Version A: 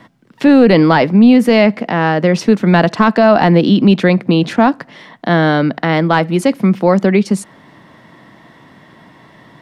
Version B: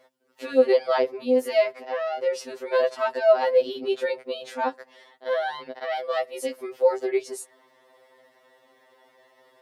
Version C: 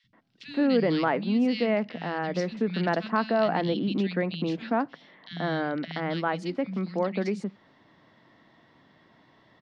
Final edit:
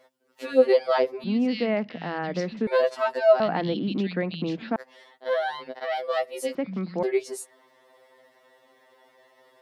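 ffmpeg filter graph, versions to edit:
-filter_complex "[2:a]asplit=3[a][b][c];[1:a]asplit=4[d][e][f][g];[d]atrim=end=1.242[h];[a]atrim=start=1.238:end=2.672[i];[e]atrim=start=2.668:end=3.402[j];[b]atrim=start=3.398:end=4.762[k];[f]atrim=start=4.758:end=6.552[l];[c]atrim=start=6.548:end=7.032[m];[g]atrim=start=7.028[n];[h][i]acrossfade=d=0.004:c1=hsin:c2=hsin[o];[o][j]acrossfade=d=0.004:c1=hsin:c2=hsin[p];[p][k]acrossfade=d=0.004:c1=hsin:c2=hsin[q];[q][l]acrossfade=d=0.004:c1=hsin:c2=hsin[r];[r][m]acrossfade=d=0.004:c1=hsin:c2=hsin[s];[s][n]acrossfade=d=0.004:c1=hsin:c2=hsin"

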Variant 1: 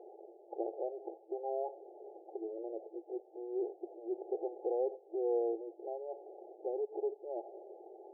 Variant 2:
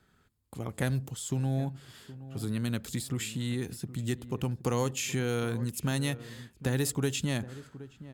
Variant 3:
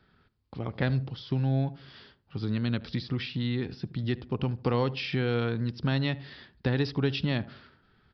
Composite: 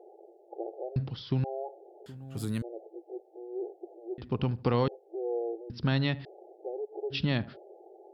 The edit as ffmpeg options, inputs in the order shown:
-filter_complex "[2:a]asplit=4[a][b][c][d];[0:a]asplit=6[e][f][g][h][i][j];[e]atrim=end=0.962[k];[a]atrim=start=0.958:end=1.442[l];[f]atrim=start=1.438:end=2.062[m];[1:a]atrim=start=2.058:end=2.622[n];[g]atrim=start=2.618:end=4.182[o];[b]atrim=start=4.178:end=4.882[p];[h]atrim=start=4.878:end=5.702[q];[c]atrim=start=5.698:end=6.252[r];[i]atrim=start=6.248:end=7.16[s];[d]atrim=start=7.1:end=7.57[t];[j]atrim=start=7.51[u];[k][l]acrossfade=d=0.004:c1=hsin:c2=hsin[v];[v][m]acrossfade=d=0.004:c1=hsin:c2=hsin[w];[w][n]acrossfade=d=0.004:c1=hsin:c2=hsin[x];[x][o]acrossfade=d=0.004:c1=hsin:c2=hsin[y];[y][p]acrossfade=d=0.004:c1=hsin:c2=hsin[z];[z][q]acrossfade=d=0.004:c1=hsin:c2=hsin[aa];[aa][r]acrossfade=d=0.004:c1=hsin:c2=hsin[ab];[ab][s]acrossfade=d=0.004:c1=hsin:c2=hsin[ac];[ac][t]acrossfade=d=0.06:c1=tri:c2=tri[ad];[ad][u]acrossfade=d=0.06:c1=tri:c2=tri"

